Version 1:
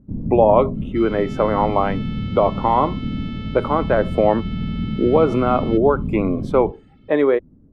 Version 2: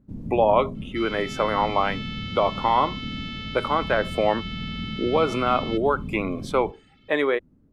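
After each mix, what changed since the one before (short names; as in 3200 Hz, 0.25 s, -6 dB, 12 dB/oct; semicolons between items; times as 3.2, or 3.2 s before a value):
master: add tilt shelf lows -9 dB, about 1300 Hz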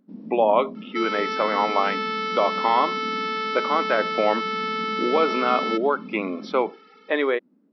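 second sound: remove band-pass 3100 Hz, Q 3; master: add brick-wall FIR band-pass 180–5800 Hz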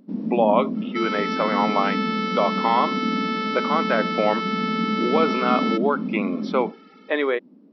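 first sound +11.0 dB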